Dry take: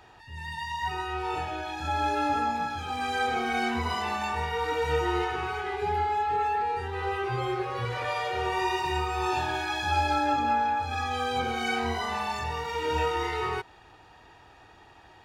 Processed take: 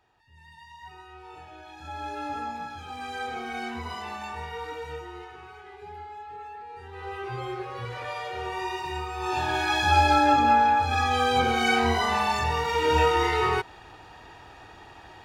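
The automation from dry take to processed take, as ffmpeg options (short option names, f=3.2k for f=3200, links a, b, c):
-af "volume=14dB,afade=t=in:st=1.36:d=1.07:silence=0.375837,afade=t=out:st=4.57:d=0.52:silence=0.398107,afade=t=in:st=6.68:d=0.62:silence=0.316228,afade=t=in:st=9.19:d=0.56:silence=0.316228"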